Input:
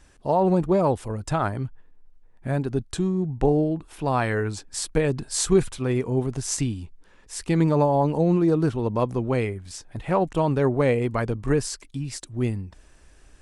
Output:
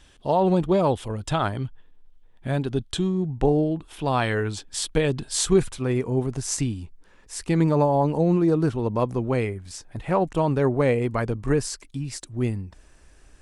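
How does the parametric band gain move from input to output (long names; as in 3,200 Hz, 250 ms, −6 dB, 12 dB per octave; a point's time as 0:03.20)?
parametric band 3,300 Hz 0.5 octaves
0:02.90 +12.5 dB
0:03.43 +4 dB
0:04.18 +10.5 dB
0:05.27 +10.5 dB
0:05.67 −1 dB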